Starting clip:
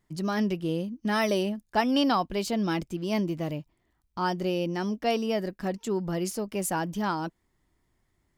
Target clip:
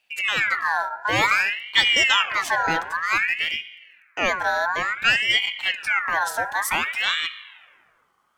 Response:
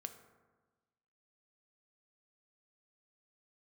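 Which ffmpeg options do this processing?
-filter_complex "[0:a]asplit=2[a][b];[b]equalizer=f=570:t=o:w=1.7:g=6.5[c];[1:a]atrim=start_sample=2205[d];[c][d]afir=irnorm=-1:irlink=0,volume=5dB[e];[a][e]amix=inputs=2:normalize=0,aeval=exprs='val(0)*sin(2*PI*1900*n/s+1900*0.4/0.55*sin(2*PI*0.55*n/s))':c=same"

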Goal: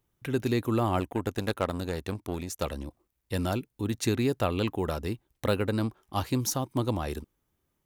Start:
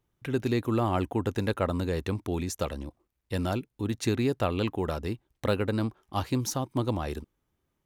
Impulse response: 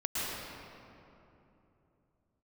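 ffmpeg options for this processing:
-filter_complex "[0:a]highshelf=f=8.5k:g=8,asettb=1/sr,asplit=3[a][b][c];[a]atrim=end=1.004[d];[b]atrim=start=1:end=2.63,asetpts=PTS-STARTPTS,afade=t=in:d=0.004:c=qsin,afade=t=out:st=1.626:d=0.004:c=qsin,aeval=exprs='0.266*(cos(1*acos(clip(val(0)/0.266,-1,1)))-cos(1*PI/2))+0.0211*(cos(7*acos(clip(val(0)/0.266,-1,1)))-cos(7*PI/2))':c=same[e];[c]atrim=start=2.626[f];[d][e]acrossfade=d=0.004:c1=hsin:c2=qsin[g];[g][f]acrossfade=d=0.004:c1=qsin:c2=hsin"

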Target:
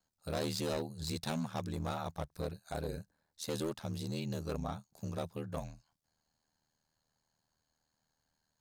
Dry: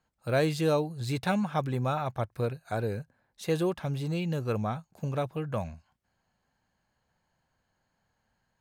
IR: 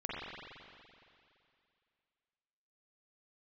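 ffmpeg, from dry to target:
-af "highshelf=f=3.4k:t=q:w=1.5:g=8,volume=25dB,asoftclip=hard,volume=-25dB,aeval=exprs='val(0)*sin(2*PI*39*n/s)':c=same,volume=-4.5dB"

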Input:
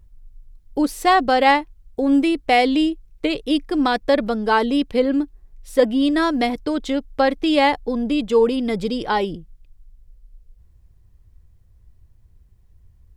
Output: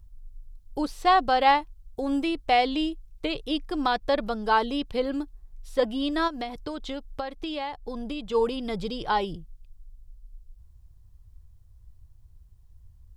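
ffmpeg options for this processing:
-filter_complex "[0:a]acrossover=split=4600[a][b];[b]acompressor=threshold=-52dB:ratio=4:attack=1:release=60[c];[a][c]amix=inputs=2:normalize=0,equalizer=f=250:t=o:w=1:g=-10,equalizer=f=500:t=o:w=1:g=-6,equalizer=f=2k:t=o:w=1:g=-8,asplit=3[d][e][f];[d]afade=t=out:st=6.27:d=0.02[g];[e]acompressor=threshold=-29dB:ratio=12,afade=t=in:st=6.27:d=0.02,afade=t=out:st=8.33:d=0.02[h];[f]afade=t=in:st=8.33:d=0.02[i];[g][h][i]amix=inputs=3:normalize=0"

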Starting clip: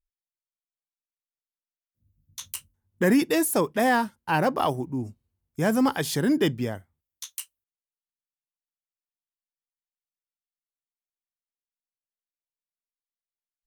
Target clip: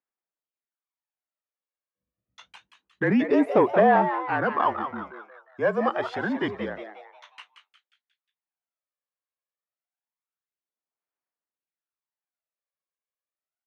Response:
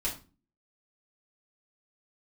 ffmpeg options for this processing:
-filter_complex "[0:a]aphaser=in_gain=1:out_gain=1:delay=1.8:decay=0.58:speed=0.27:type=sinusoidal,asplit=2[a][b];[b]highpass=f=720:p=1,volume=12dB,asoftclip=type=tanh:threshold=-5.5dB[c];[a][c]amix=inputs=2:normalize=0,lowpass=f=1.4k:p=1,volume=-6dB,afreqshift=-36,highpass=190,lowpass=2.4k,asplit=2[d][e];[e]asplit=5[f][g][h][i][j];[f]adelay=179,afreqshift=140,volume=-9dB[k];[g]adelay=358,afreqshift=280,volume=-16.1dB[l];[h]adelay=537,afreqshift=420,volume=-23.3dB[m];[i]adelay=716,afreqshift=560,volume=-30.4dB[n];[j]adelay=895,afreqshift=700,volume=-37.5dB[o];[k][l][m][n][o]amix=inputs=5:normalize=0[p];[d][p]amix=inputs=2:normalize=0,volume=-2.5dB"

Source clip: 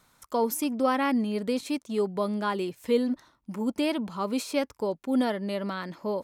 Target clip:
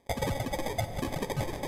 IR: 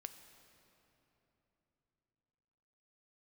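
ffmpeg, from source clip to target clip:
-filter_complex "[0:a]aeval=exprs='if(lt(val(0),0),0.447*val(0),val(0))':c=same,afreqshift=320,highshelf=f=2.3k:g=7.5,atempo=1.4,aresample=11025,acrusher=samples=21:mix=1:aa=0.000001,aresample=44100,asetrate=117306,aresample=44100,asplit=2[a][b];[b]asoftclip=type=tanh:threshold=-25.5dB,volume=-8dB[c];[a][c]amix=inputs=2:normalize=0[d];[1:a]atrim=start_sample=2205[e];[d][e]afir=irnorm=-1:irlink=0"

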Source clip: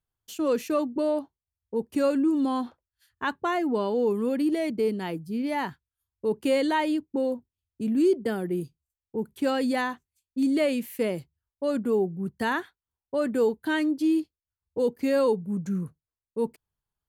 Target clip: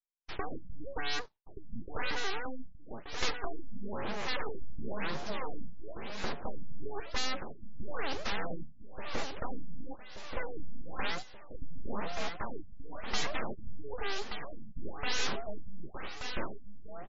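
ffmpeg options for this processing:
-filter_complex "[0:a]afftfilt=real='real(if(between(b,1,1008),(2*floor((b-1)/24)+1)*24-b,b),0)':imag='imag(if(between(b,1,1008),(2*floor((b-1)/24)+1)*24-b,b),0)*if(between(b,1,1008),-1,1)':win_size=2048:overlap=0.75,agate=range=-33dB:threshold=-45dB:ratio=3:detection=peak,aemphasis=mode=reproduction:type=50fm,acrossover=split=3600[a][b];[b]acompressor=threshold=-59dB:ratio=4:attack=1:release=60[c];[a][c]amix=inputs=2:normalize=0,aexciter=amount=6:drive=2:freq=3.8k,aeval=exprs='0.0447*(abs(mod(val(0)/0.0447+3,4)-2)-1)':c=same,acrossover=split=190|1500[d][e][f];[d]acompressor=threshold=-50dB:ratio=4[g];[e]acompressor=threshold=-43dB:ratio=4[h];[f]acompressor=threshold=-37dB:ratio=4[i];[g][h][i]amix=inputs=3:normalize=0,aeval=exprs='abs(val(0))':c=same,aecho=1:1:1179|2358|3537|4716|5895|7074|8253:0.473|0.251|0.133|0.0704|0.0373|0.0198|0.0105,aresample=22050,aresample=44100,afftfilt=real='re*lt(b*sr/1024,240*pow(7500/240,0.5+0.5*sin(2*PI*1*pts/sr)))':imag='im*lt(b*sr/1024,240*pow(7500/240,0.5+0.5*sin(2*PI*1*pts/sr)))':win_size=1024:overlap=0.75,volume=8dB"

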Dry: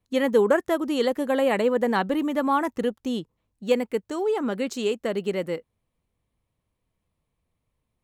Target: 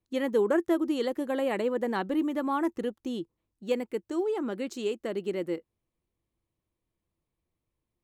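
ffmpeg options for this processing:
-af "equalizer=f=340:t=o:w=0.28:g=11.5,volume=-7.5dB"

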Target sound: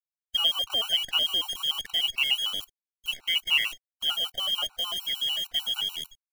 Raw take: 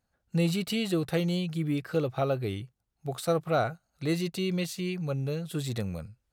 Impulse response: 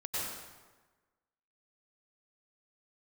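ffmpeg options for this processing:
-af "lowpass=f=2.9k:t=q:w=0.5098,lowpass=f=2.9k:t=q:w=0.6013,lowpass=f=2.9k:t=q:w=0.9,lowpass=f=2.9k:t=q:w=2.563,afreqshift=-3400,acrusher=bits=7:dc=4:mix=0:aa=0.000001,afftfilt=real='re*gt(sin(2*PI*6.7*pts/sr)*(1-2*mod(floor(b*sr/1024/760),2)),0)':imag='im*gt(sin(2*PI*6.7*pts/sr)*(1-2*mod(floor(b*sr/1024/760),2)),0)':win_size=1024:overlap=0.75,volume=4.5dB"

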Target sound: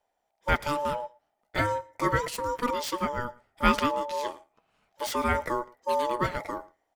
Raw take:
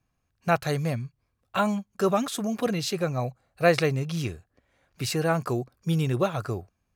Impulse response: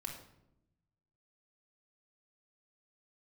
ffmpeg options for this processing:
-filter_complex "[0:a]aeval=exprs='0.501*(cos(1*acos(clip(val(0)/0.501,-1,1)))-cos(1*PI/2))+0.0316*(cos(3*acos(clip(val(0)/0.501,-1,1)))-cos(3*PI/2))':c=same,acrossover=split=4000[a][b];[b]aeval=exprs='(mod(26.6*val(0)+1,2)-1)/26.6':c=same[c];[a][c]amix=inputs=2:normalize=0,flanger=delay=4.2:depth=2.5:regen=-71:speed=0.31:shape=sinusoidal,asplit=2[d][e];[e]bandpass=f=1.2k:t=q:w=7.9:csg=0[f];[1:a]atrim=start_sample=2205,asetrate=34398,aresample=44100[g];[f][g]afir=irnorm=-1:irlink=0,volume=-11.5dB[h];[d][h]amix=inputs=2:normalize=0,aeval=exprs='val(0)*sin(2*PI*730*n/s)':c=same,aecho=1:1:113:0.0708,volume=6.5dB"

